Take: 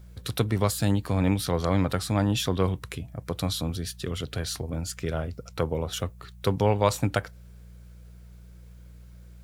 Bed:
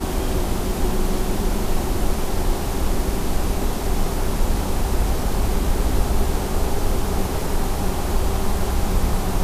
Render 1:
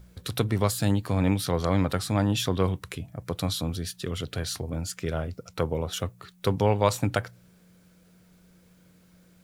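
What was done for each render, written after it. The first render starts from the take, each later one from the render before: de-hum 60 Hz, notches 2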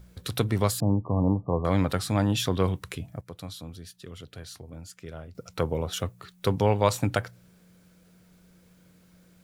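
0.80–1.65 s: brick-wall FIR low-pass 1.2 kHz; 3.21–5.35 s: gain -11 dB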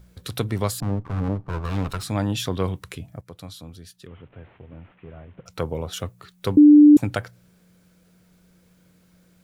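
0.82–2.03 s: comb filter that takes the minimum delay 0.75 ms; 4.07–5.46 s: one-bit delta coder 16 kbps, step -53 dBFS; 6.57–6.97 s: bleep 296 Hz -6.5 dBFS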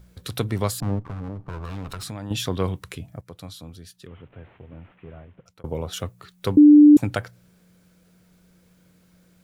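0.99–2.31 s: compression, threshold -29 dBFS; 5.14–5.64 s: fade out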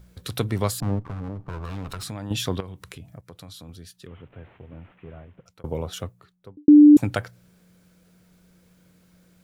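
2.60–3.69 s: compression 3:1, threshold -38 dBFS; 5.74–6.68 s: studio fade out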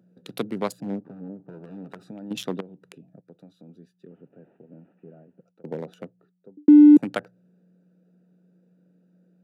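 local Wiener filter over 41 samples; steep high-pass 170 Hz 36 dB/octave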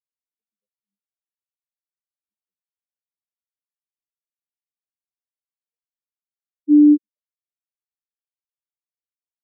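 spectral contrast expander 4:1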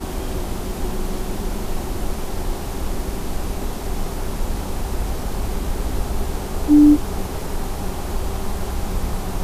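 add bed -3.5 dB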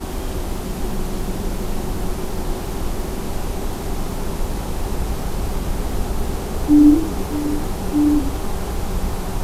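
repeats whose band climbs or falls 620 ms, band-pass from 150 Hz, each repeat 1.4 oct, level -0.5 dB; modulated delay 95 ms, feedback 37%, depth 179 cents, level -12 dB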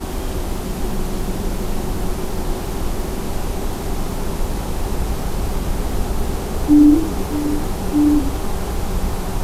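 trim +1.5 dB; peak limiter -3 dBFS, peak gain reduction 2.5 dB

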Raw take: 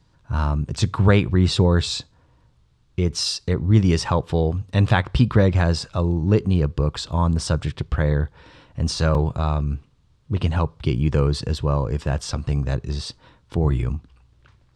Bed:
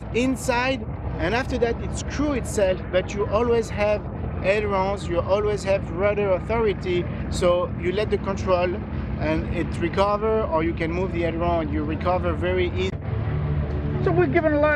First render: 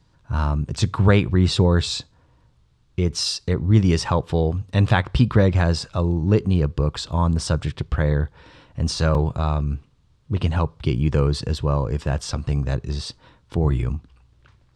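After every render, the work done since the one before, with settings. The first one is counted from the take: no audible change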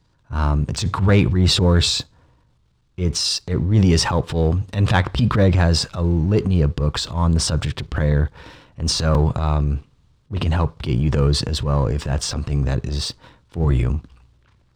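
transient shaper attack -11 dB, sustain +5 dB; waveshaping leveller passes 1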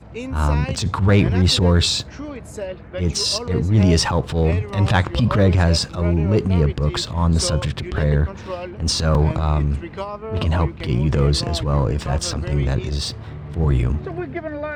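add bed -8.5 dB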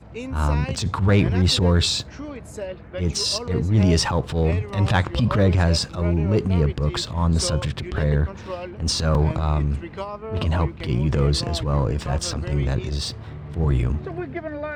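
trim -2.5 dB

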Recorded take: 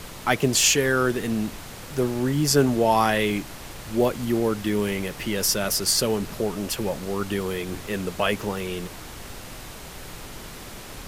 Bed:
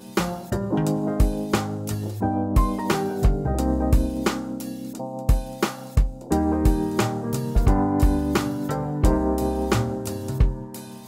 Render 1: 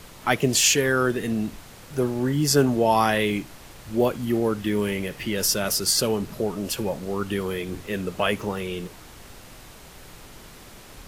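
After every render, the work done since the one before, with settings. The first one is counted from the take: noise print and reduce 6 dB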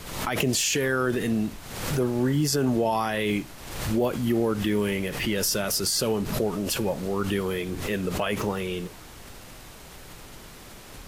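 peak limiter -15.5 dBFS, peak gain reduction 10.5 dB; swell ahead of each attack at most 54 dB/s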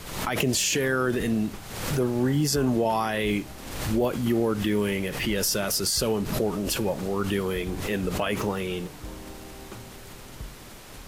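add bed -21.5 dB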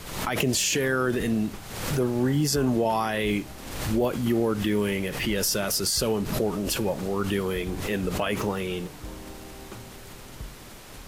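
no audible change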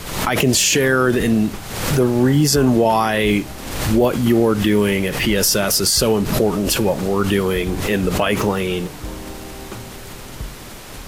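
trim +9 dB; peak limiter -3 dBFS, peak gain reduction 2.5 dB

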